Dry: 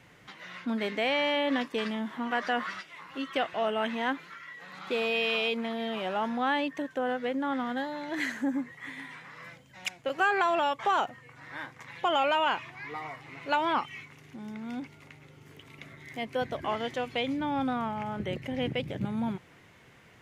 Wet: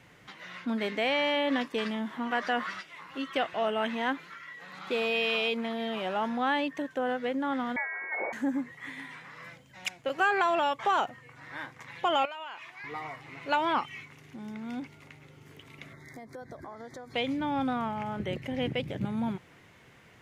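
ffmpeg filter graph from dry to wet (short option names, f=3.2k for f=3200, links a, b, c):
-filter_complex "[0:a]asettb=1/sr,asplit=3[a][b][c];[a]atrim=end=7.764[d];[b]atrim=start=7.76:end=8.33,asetpts=PTS-STARTPTS,afade=t=in:d=0.004:c=qsin,afade=t=out:st=0.566:d=0.004:c=qsin,aeval=exprs='clip(val(0),-1,0.0631)':c=same,lowpass=f=2.1k:t=q:w=0.5098,lowpass=f=2.1k:t=q:w=0.6013,lowpass=f=2.1k:t=q:w=0.9,lowpass=f=2.1k:t=q:w=2.563,afreqshift=-2500,highpass=f=190:w=0.5412,highpass=f=190:w=1.3066[e];[c]atrim=start=8.326[f];[d][e]acrossfade=d=0.004:c1=hsin:c2=qsin[g];[g][f]acrossfade=d=0.004:c1=qsin:c2=hsin,asettb=1/sr,asplit=3[h][i][j];[h]atrim=end=12.254[k];[i]atrim=start=12.25:end=12.84,asetpts=PTS-STARTPTS,afade=t=in:d=0.004:c=qsin,afade=t=out:st=0.586:d=0.004:c=qsin,highpass=f=850:p=1,acompressor=threshold=-39dB:ratio=4:attack=3.2:release=140:knee=1:detection=peak[l];[j]atrim=start=12.836[m];[k][l]acrossfade=d=0.004:c1=hsin:c2=qsin[n];[n][m]acrossfade=d=0.004:c1=qsin:c2=hsin,asettb=1/sr,asplit=3[o][p][q];[o]atrim=end=15.934[r];[p]atrim=start=15.93:end=17.14,asetpts=PTS-STARTPTS,afade=t=in:d=0.004:c=qsin,afade=t=out:st=1.206:d=0.004:c=qsin,acompressor=threshold=-40dB:ratio=8:attack=3.2:release=140:knee=1:detection=peak,asuperstop=centerf=2800:order=4:qfactor=1.4[s];[q]atrim=start=17.136[t];[r][s]acrossfade=d=0.004:c1=hsin:c2=qsin[u];[u][t]acrossfade=d=0.004:c1=qsin:c2=hsin"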